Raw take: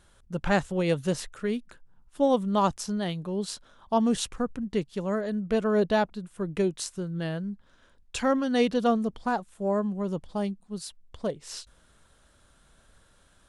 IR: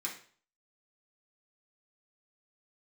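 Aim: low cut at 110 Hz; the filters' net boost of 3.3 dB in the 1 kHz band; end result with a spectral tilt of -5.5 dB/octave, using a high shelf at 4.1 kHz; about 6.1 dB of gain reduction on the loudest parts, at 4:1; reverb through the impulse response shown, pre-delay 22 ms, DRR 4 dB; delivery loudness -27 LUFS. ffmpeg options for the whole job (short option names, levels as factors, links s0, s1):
-filter_complex "[0:a]highpass=110,equalizer=f=1000:t=o:g=4.5,highshelf=f=4100:g=-3.5,acompressor=threshold=0.0631:ratio=4,asplit=2[s0][s1];[1:a]atrim=start_sample=2205,adelay=22[s2];[s1][s2]afir=irnorm=-1:irlink=0,volume=0.531[s3];[s0][s3]amix=inputs=2:normalize=0,volume=1.41"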